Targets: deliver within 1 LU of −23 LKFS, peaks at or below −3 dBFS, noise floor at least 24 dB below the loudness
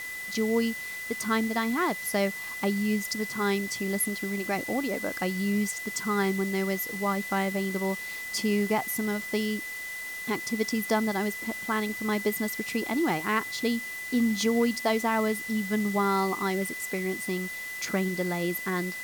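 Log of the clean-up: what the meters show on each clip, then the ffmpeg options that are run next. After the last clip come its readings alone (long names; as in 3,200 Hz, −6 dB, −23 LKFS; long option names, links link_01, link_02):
interfering tone 2,000 Hz; level of the tone −35 dBFS; background noise floor −37 dBFS; target noise floor −53 dBFS; integrated loudness −28.5 LKFS; sample peak −13.5 dBFS; target loudness −23.0 LKFS
→ -af "bandreject=frequency=2000:width=30"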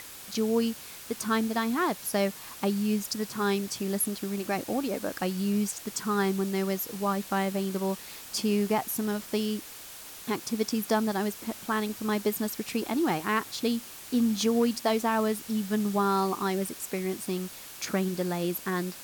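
interfering tone none found; background noise floor −45 dBFS; target noise floor −54 dBFS
→ -af "afftdn=noise_reduction=9:noise_floor=-45"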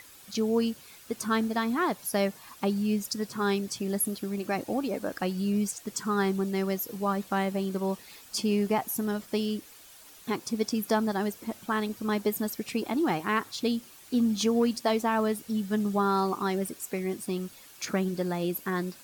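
background noise floor −52 dBFS; target noise floor −54 dBFS
→ -af "afftdn=noise_reduction=6:noise_floor=-52"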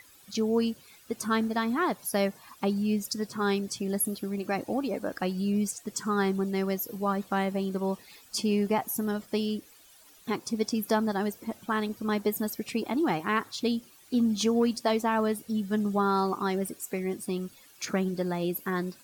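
background noise floor −56 dBFS; integrated loudness −29.5 LKFS; sample peak −14.0 dBFS; target loudness −23.0 LKFS
→ -af "volume=6.5dB"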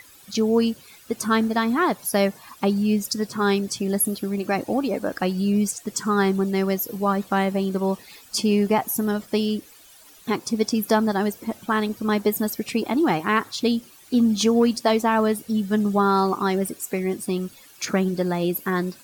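integrated loudness −23.0 LKFS; sample peak −7.5 dBFS; background noise floor −49 dBFS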